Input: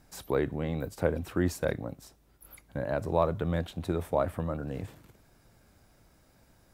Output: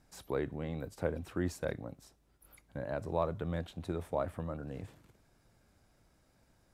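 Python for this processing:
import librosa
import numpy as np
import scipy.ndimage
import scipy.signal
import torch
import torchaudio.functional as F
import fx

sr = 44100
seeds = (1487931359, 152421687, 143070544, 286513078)

y = scipy.signal.sosfilt(scipy.signal.butter(2, 12000.0, 'lowpass', fs=sr, output='sos'), x)
y = y * librosa.db_to_amplitude(-6.5)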